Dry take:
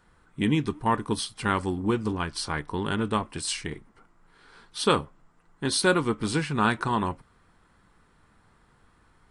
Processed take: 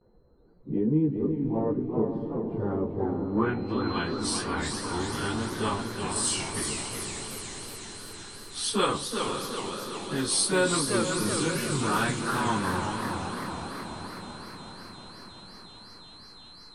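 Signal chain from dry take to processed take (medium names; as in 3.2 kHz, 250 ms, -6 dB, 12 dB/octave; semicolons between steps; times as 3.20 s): in parallel at -1 dB: compression, threshold -36 dBFS, peak gain reduction 18.5 dB; on the sum: plain phase-vocoder stretch 1.8×; gate with hold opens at -50 dBFS; on a send at -21 dB: reverberation RT60 2.9 s, pre-delay 3 ms; on the sum: whistle 4.1 kHz -45 dBFS; low-pass sweep 490 Hz -> 9.6 kHz, 2.89–4.32 s; echo that smears into a reverb 525 ms, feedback 62%, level -8 dB; modulated delay 379 ms, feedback 57%, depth 199 cents, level -6 dB; trim -3 dB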